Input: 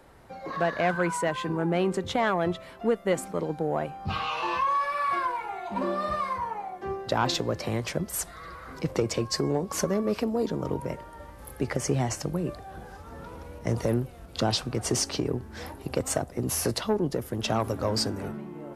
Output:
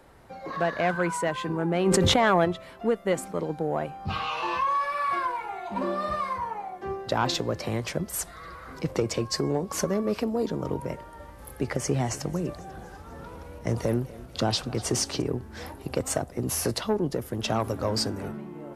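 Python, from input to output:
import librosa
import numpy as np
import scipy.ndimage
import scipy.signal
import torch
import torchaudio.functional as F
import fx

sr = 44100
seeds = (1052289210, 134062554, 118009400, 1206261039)

y = fx.env_flatten(x, sr, amount_pct=100, at=(1.85, 2.44), fade=0.02)
y = fx.echo_feedback(y, sr, ms=246, feedback_pct=52, wet_db=-19, at=(11.66, 15.22))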